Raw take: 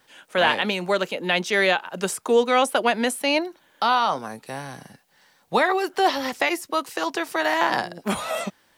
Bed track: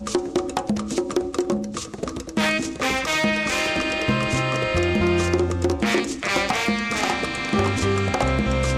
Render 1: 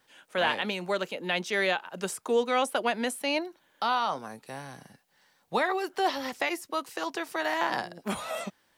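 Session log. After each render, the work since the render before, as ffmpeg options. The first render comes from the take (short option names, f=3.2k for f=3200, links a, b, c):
-af "volume=-7dB"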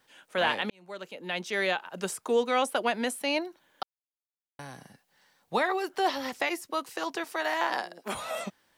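-filter_complex "[0:a]asettb=1/sr,asplit=3[a][b][c];[a]atrim=end=7.244[d];[b]atrim=start=7.24:end=8.15,asetpts=PTS-STARTPTS,afade=t=in:d=0.004:c=qsin,afade=t=out:st=0.906:d=0.004:c=qsin,highpass=330[e];[c]atrim=start=8.146[f];[d][e]acrossfade=d=0.004:c1=hsin:c2=qsin[g];[g][f]acrossfade=d=0.004:c1=qsin:c2=hsin,asplit=4[h][i][j][k];[h]atrim=end=0.7,asetpts=PTS-STARTPTS,afade=t=out:st=0.696:d=0.004:c=hsin[l];[i]atrim=start=0.7:end=3.83,asetpts=PTS-STARTPTS,afade=t=in:d=1.45:c=qsin,afade=t=out:st=3.126:d=0.004:c=hsin[m];[j]atrim=start=3.83:end=4.59,asetpts=PTS-STARTPTS,volume=0[n];[k]atrim=start=4.59,asetpts=PTS-STARTPTS,afade=t=in:d=0.004:c=hsin[o];[l][m][n][o]concat=n=4:v=0:a=1"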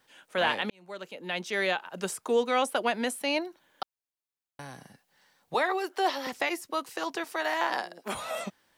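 -filter_complex "[0:a]asettb=1/sr,asplit=3[a][b][c];[a]atrim=end=5.544[d];[b]atrim=start=5.54:end=6.27,asetpts=PTS-STARTPTS,afade=t=in:d=0.004:c=qsin,afade=t=out:st=0.726:d=0.004:c=qsin,highpass=f=290:w=0.5412,highpass=f=290:w=1.3066[e];[c]atrim=start=6.266[f];[d][e]acrossfade=d=0.004:c1=hsin:c2=qsin[g];[g][f]acrossfade=d=0.004:c1=qsin:c2=hsin"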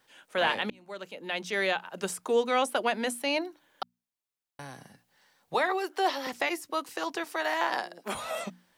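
-af "bandreject=f=60:t=h:w=6,bandreject=f=120:t=h:w=6,bandreject=f=180:t=h:w=6,bandreject=f=240:t=h:w=6,bandreject=f=300:t=h:w=6"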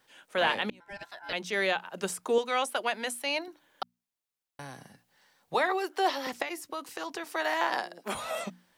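-filter_complex "[0:a]asettb=1/sr,asplit=3[a][b][c];[a]atrim=end=0.804[d];[b]atrim=start=0.8:end=1.33,asetpts=PTS-STARTPTS,afade=t=in:d=0.004:c=qsin,afade=t=out:st=0.526:d=0.004:c=qsin,aeval=exprs='val(0)*sin(2*PI*1200*n/s)':c=same[e];[c]atrim=start=1.326[f];[d][e]acrossfade=d=0.004:c1=hsin:c2=qsin[g];[g][f]acrossfade=d=0.004:c1=qsin:c2=hsin,asettb=1/sr,asplit=3[h][i][j];[h]atrim=end=2.384[k];[i]atrim=start=2.38:end=3.48,asetpts=PTS-STARTPTS,afade=t=in:d=0.004:c=qsin,afade=t=out:st=1.096:d=0.004:c=qsin,lowshelf=f=430:g=-11.5[l];[j]atrim=start=3.476[m];[k][l]acrossfade=d=0.004:c1=hsin:c2=qsin[n];[n][m]acrossfade=d=0.004:c1=qsin:c2=hsin,asettb=1/sr,asplit=3[o][p][q];[o]atrim=end=6.424[r];[p]atrim=start=6.42:end=7.31,asetpts=PTS-STARTPTS,afade=t=in:d=0.004:c=qsin,afade=t=out:st=0.886:d=0.004:c=qsin,acompressor=threshold=-32dB:ratio=5:attack=3.2:release=140:knee=1:detection=peak[s];[q]atrim=start=7.306[t];[r][s]acrossfade=d=0.004:c1=hsin:c2=qsin[u];[u][t]acrossfade=d=0.004:c1=qsin:c2=hsin"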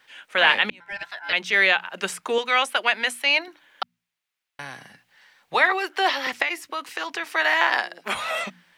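-af "equalizer=f=2.2k:w=0.6:g=13.5,bandreject=f=57.12:t=h:w=4,bandreject=f=114.24:t=h:w=4,bandreject=f=171.36:t=h:w=4"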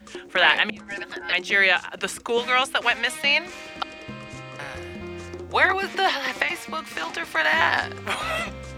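-filter_complex "[1:a]volume=-16dB[a];[0:a][a]amix=inputs=2:normalize=0"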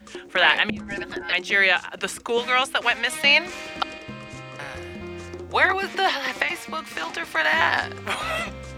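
-filter_complex "[0:a]asettb=1/sr,asplit=3[a][b][c];[a]atrim=end=0.694[d];[b]atrim=start=0.69:end=1.23,asetpts=PTS-STARTPTS,afade=t=in:d=0.004:c=qsin,afade=t=out:st=0.536:d=0.004:c=qsin,lowshelf=f=310:g=12[e];[c]atrim=start=1.226[f];[d][e]acrossfade=d=0.004:c1=hsin:c2=qsin[g];[g][f]acrossfade=d=0.004:c1=qsin:c2=hsin,asplit=3[h][i][j];[h]atrim=end=3.122[k];[i]atrim=start=3.118:end=3.982,asetpts=PTS-STARTPTS,volume=3.5dB[l];[j]atrim=start=3.978[m];[k][l]acrossfade=d=0.004:c1=hsin:c2=hsin[n];[n][m]acrossfade=d=0.004:c1=hsin:c2=hsin"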